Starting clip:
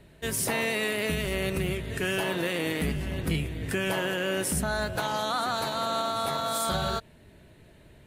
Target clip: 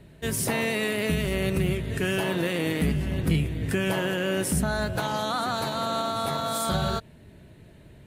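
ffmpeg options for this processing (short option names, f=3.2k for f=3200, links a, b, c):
-af "equalizer=f=140:t=o:w=2.6:g=6"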